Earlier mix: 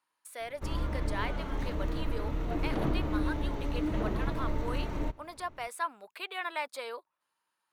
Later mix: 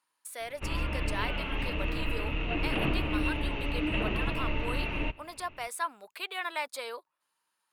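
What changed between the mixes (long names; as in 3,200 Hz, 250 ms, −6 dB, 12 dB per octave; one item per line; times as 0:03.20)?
background: add low-pass with resonance 2,700 Hz, resonance Q 13
master: add high-shelf EQ 3,500 Hz +6.5 dB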